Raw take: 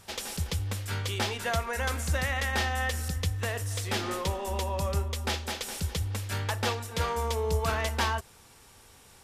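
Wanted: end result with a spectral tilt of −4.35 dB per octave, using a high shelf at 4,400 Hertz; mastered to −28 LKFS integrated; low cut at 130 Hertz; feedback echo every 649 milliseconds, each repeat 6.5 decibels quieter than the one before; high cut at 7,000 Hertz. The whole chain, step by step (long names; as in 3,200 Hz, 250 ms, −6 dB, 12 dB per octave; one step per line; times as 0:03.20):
high-pass filter 130 Hz
low-pass filter 7,000 Hz
high-shelf EQ 4,400 Hz −7.5 dB
repeating echo 649 ms, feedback 47%, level −6.5 dB
level +4.5 dB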